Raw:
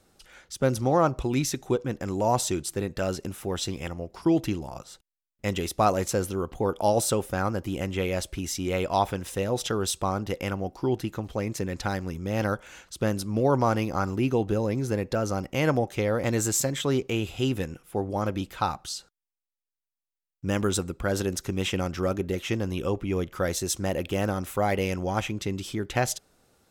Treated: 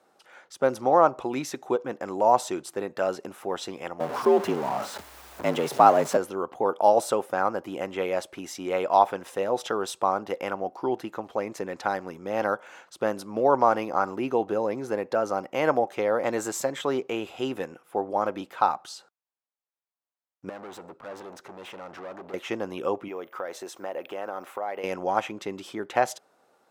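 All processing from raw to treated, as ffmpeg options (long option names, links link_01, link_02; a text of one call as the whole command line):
ffmpeg -i in.wav -filter_complex "[0:a]asettb=1/sr,asplit=3[link_01][link_02][link_03];[link_01]atrim=end=4.004[link_04];[link_02]atrim=start=4:end=6.17,asetpts=PTS-STARTPTS,afade=type=in:duration=0.004:curve=qsin,afade=type=out:start_time=2.166:duration=0.004:curve=qsin,aeval=exprs='val(0)+0.5*0.0355*sgn(val(0))':channel_layout=same,lowshelf=frequency=150:gain=6.5,afreqshift=64[link_05];[link_03]atrim=start=6.166[link_06];[link_04][link_05]acrossfade=duration=0.004:curve1=hsin:curve2=qsin[link_07];[link_07][link_06]acrossfade=duration=0.004:curve1=qsin:curve2=hsin,asettb=1/sr,asplit=3[link_08][link_09][link_10];[link_08]atrim=end=20.494[link_11];[link_09]atrim=start=20.49:end=22.34,asetpts=PTS-STARTPTS,afade=type=in:duration=0.004:curve=qsin,afade=type=out:start_time=1.846:duration=0.004:curve=qsin,lowpass=frequency=3600:poles=1,acompressor=threshold=-27dB:ratio=6:attack=3.2:release=140:knee=1:detection=peak,asoftclip=type=hard:threshold=-37.5dB[link_12];[link_10]atrim=start=22.336[link_13];[link_11][link_12]acrossfade=duration=0.004:curve1=hsin:curve2=qsin[link_14];[link_14][link_13]acrossfade=duration=0.004:curve1=qsin:curve2=hsin,asettb=1/sr,asplit=3[link_15][link_16][link_17];[link_15]atrim=end=23.084[link_18];[link_16]atrim=start=23.08:end=24.84,asetpts=PTS-STARTPTS,afade=type=in:duration=0.004:curve=qsin,afade=type=out:start_time=1.756:duration=0.004:curve=qsin,bass=frequency=250:gain=-12,treble=frequency=4000:gain=-6,aeval=exprs='val(0)+0.00141*sin(2*PI*15000*n/s)':channel_layout=same,acompressor=threshold=-31dB:ratio=6:attack=3.2:release=140:knee=1:detection=peak[link_19];[link_17]atrim=start=24.836[link_20];[link_18][link_19]acrossfade=duration=0.004:curve1=hsin:curve2=qsin[link_21];[link_21][link_20]acrossfade=duration=0.004:curve1=qsin:curve2=hsin,highpass=200,equalizer=frequency=850:width_type=o:width=2.7:gain=15,volume=-9dB" out.wav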